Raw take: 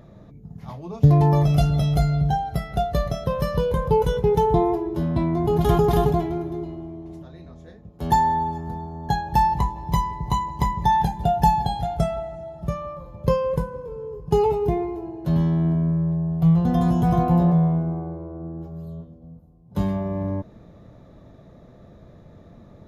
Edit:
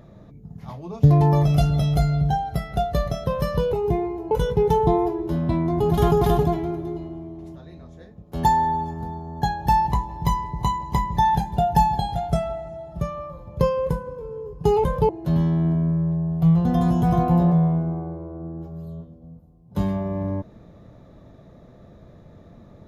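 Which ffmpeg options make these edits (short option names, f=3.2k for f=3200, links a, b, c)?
-filter_complex "[0:a]asplit=5[a][b][c][d][e];[a]atrim=end=3.732[f];[b]atrim=start=14.508:end=15.092[g];[c]atrim=start=3.978:end=14.512[h];[d]atrim=start=3.728:end=3.982[i];[e]atrim=start=15.088[j];[f][g]acrossfade=d=0.004:c1=hsin:c2=hsin[k];[k][h]acrossfade=d=0.004:c1=hsin:c2=hsin[l];[l][i]acrossfade=d=0.004:c1=hsin:c2=hsin[m];[m][j]acrossfade=d=0.004:c1=hsin:c2=hsin"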